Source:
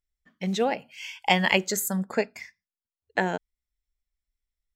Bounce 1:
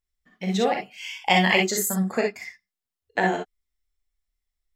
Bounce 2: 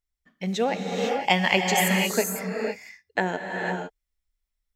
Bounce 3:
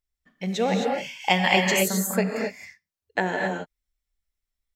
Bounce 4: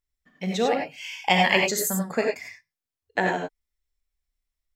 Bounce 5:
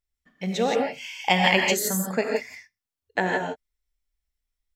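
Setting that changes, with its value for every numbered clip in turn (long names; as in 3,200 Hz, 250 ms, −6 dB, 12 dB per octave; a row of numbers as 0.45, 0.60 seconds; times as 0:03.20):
reverb whose tail is shaped and stops, gate: 80, 530, 290, 120, 190 milliseconds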